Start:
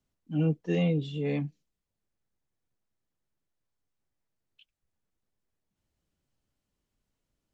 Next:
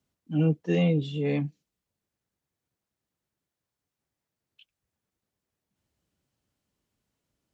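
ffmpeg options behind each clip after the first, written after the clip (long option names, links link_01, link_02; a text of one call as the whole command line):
ffmpeg -i in.wav -af "highpass=66,volume=3dB" out.wav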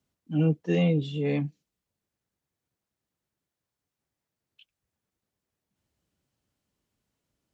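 ffmpeg -i in.wav -af anull out.wav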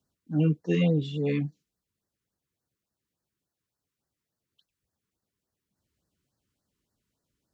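ffmpeg -i in.wav -af "afftfilt=real='re*(1-between(b*sr/1024,620*pow(2900/620,0.5+0.5*sin(2*PI*3.5*pts/sr))/1.41,620*pow(2900/620,0.5+0.5*sin(2*PI*3.5*pts/sr))*1.41))':imag='im*(1-between(b*sr/1024,620*pow(2900/620,0.5+0.5*sin(2*PI*3.5*pts/sr))/1.41,620*pow(2900/620,0.5+0.5*sin(2*PI*3.5*pts/sr))*1.41))':win_size=1024:overlap=0.75" out.wav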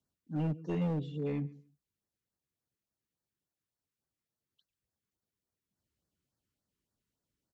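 ffmpeg -i in.wav -filter_complex "[0:a]asplit=2[link_01][link_02];[link_02]adelay=140,lowpass=frequency=1200:poles=1,volume=-19.5dB,asplit=2[link_03][link_04];[link_04]adelay=140,lowpass=frequency=1200:poles=1,volume=0.21[link_05];[link_01][link_03][link_05]amix=inputs=3:normalize=0,acrossover=split=1700[link_06][link_07];[link_06]volume=21.5dB,asoftclip=hard,volume=-21.5dB[link_08];[link_07]acompressor=threshold=-51dB:ratio=6[link_09];[link_08][link_09]amix=inputs=2:normalize=0,volume=-7dB" out.wav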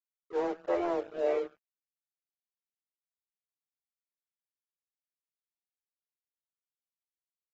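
ffmpeg -i in.wav -af "highpass=frequency=220:width_type=q:width=0.5412,highpass=frequency=220:width_type=q:width=1.307,lowpass=frequency=2100:width_type=q:width=0.5176,lowpass=frequency=2100:width_type=q:width=0.7071,lowpass=frequency=2100:width_type=q:width=1.932,afreqshift=170,aeval=exprs='sgn(val(0))*max(abs(val(0))-0.00224,0)':channel_layout=same,volume=7.5dB" -ar 44100 -c:a aac -b:a 24k out.aac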